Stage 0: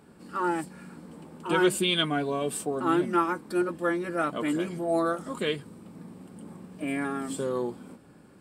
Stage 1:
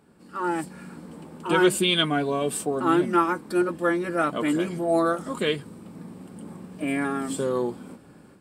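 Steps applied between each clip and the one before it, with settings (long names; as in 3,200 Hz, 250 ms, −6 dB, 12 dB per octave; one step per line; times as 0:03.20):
automatic gain control gain up to 8 dB
level −4 dB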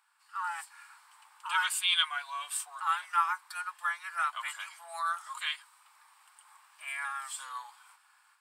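Butterworth high-pass 920 Hz 48 dB per octave
level −3.5 dB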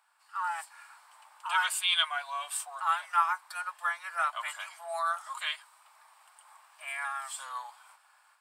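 parametric band 630 Hz +13 dB 0.64 octaves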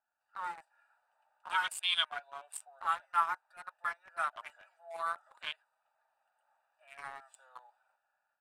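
adaptive Wiener filter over 41 samples
level −3 dB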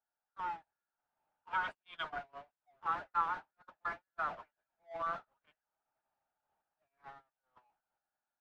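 converter with a step at zero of −32 dBFS
Bessel low-pass filter 1,400 Hz, order 2
noise gate −36 dBFS, range −50 dB
level −3 dB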